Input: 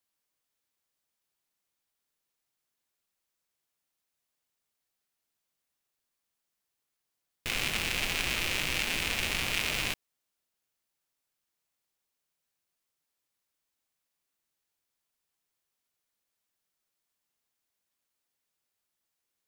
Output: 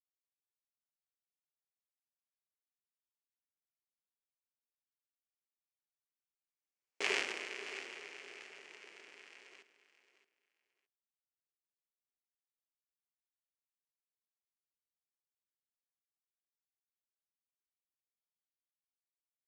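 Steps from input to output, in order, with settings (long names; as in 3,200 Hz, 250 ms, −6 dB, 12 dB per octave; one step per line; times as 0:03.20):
source passing by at 0:07.08, 21 m/s, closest 2.2 metres
ring modulation 410 Hz
loudspeaker in its box 350–7,500 Hz, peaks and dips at 380 Hz +5 dB, 2,300 Hz +5 dB, 3,700 Hz −7 dB
on a send: repeating echo 620 ms, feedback 22%, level −14 dB
on the sum: level +1 dB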